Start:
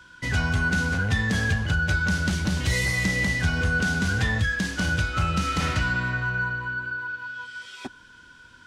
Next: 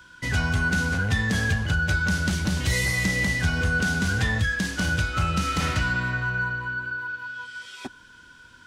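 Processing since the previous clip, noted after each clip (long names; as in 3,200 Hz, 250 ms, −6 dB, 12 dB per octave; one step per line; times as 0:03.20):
high-shelf EQ 11,000 Hz +7.5 dB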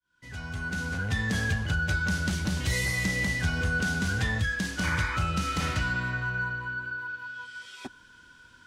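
fade in at the beginning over 1.29 s
sound drawn into the spectrogram noise, 0:04.83–0:05.17, 850–2,500 Hz −30 dBFS
level −4 dB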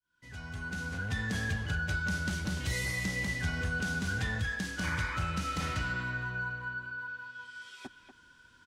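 far-end echo of a speakerphone 240 ms, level −9 dB
level −5.5 dB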